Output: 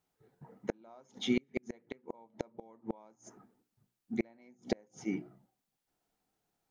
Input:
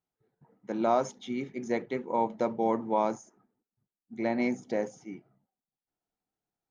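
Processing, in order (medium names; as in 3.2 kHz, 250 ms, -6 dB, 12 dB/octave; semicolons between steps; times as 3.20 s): hum notches 60/120/180/240/300/360 Hz; inverted gate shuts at -26 dBFS, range -38 dB; trim +8 dB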